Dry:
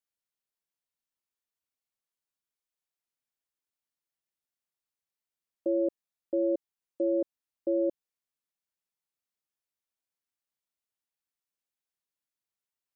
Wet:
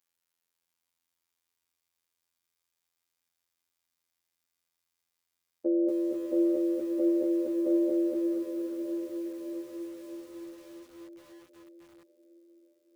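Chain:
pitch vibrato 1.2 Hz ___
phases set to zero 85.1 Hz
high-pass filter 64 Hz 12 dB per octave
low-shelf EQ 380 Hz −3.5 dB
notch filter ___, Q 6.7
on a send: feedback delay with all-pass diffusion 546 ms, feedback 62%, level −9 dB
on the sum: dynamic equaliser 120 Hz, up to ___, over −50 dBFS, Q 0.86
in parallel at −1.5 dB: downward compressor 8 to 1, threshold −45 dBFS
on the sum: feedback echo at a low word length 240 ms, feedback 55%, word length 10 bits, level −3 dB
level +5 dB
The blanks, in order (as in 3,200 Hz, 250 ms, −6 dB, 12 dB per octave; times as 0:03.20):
9.1 cents, 660 Hz, −3 dB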